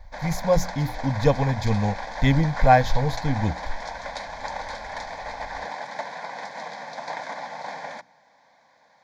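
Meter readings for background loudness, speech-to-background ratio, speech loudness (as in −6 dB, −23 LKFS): −34.0 LKFS, 11.0 dB, −23.0 LKFS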